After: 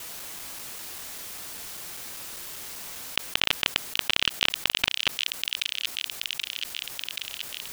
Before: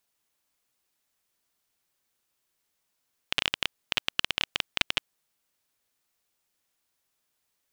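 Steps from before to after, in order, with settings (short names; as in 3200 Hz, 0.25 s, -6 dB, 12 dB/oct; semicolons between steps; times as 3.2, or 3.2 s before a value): local time reversal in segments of 0.197 s; thin delay 0.779 s, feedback 34%, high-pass 3000 Hz, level -11 dB; fast leveller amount 70%; gain +1 dB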